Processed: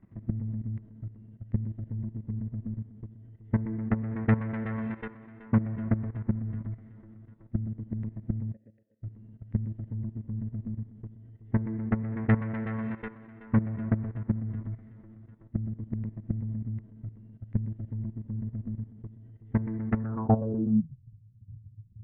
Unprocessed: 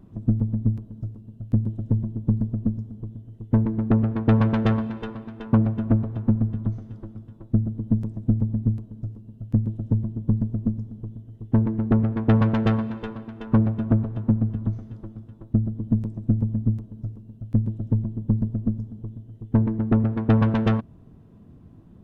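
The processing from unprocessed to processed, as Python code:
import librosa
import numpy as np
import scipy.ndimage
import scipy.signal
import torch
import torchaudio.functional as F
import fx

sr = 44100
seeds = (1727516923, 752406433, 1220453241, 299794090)

y = fx.vowel_filter(x, sr, vowel='e', at=(8.52, 9.02), fade=0.02)
y = fx.level_steps(y, sr, step_db=16)
y = fx.hpss(y, sr, part='percussive', gain_db=-7)
y = fx.filter_sweep_lowpass(y, sr, from_hz=2000.0, to_hz=110.0, start_s=19.97, end_s=21.0, q=6.1)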